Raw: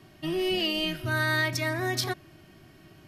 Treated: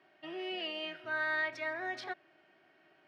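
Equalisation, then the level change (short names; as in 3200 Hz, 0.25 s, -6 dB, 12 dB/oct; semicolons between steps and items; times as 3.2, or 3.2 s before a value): HPF 640 Hz 12 dB/oct; LPF 2000 Hz 12 dB/oct; bell 1100 Hz -8.5 dB 0.3 oct; -3.0 dB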